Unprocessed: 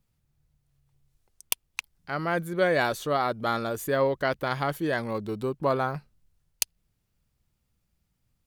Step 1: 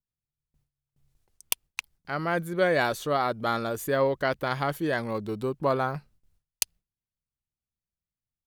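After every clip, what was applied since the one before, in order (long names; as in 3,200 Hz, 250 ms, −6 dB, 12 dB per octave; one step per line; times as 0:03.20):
noise gate with hold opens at −58 dBFS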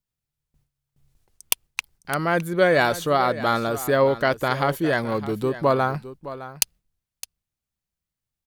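single-tap delay 612 ms −14.5 dB
level +5.5 dB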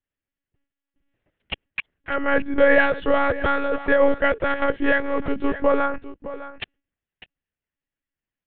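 loudspeaker in its box 180–3,000 Hz, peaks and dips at 180 Hz +9 dB, 440 Hz +7 dB, 960 Hz −4 dB, 1,800 Hz +8 dB, 2,900 Hz +4 dB
one-pitch LPC vocoder at 8 kHz 280 Hz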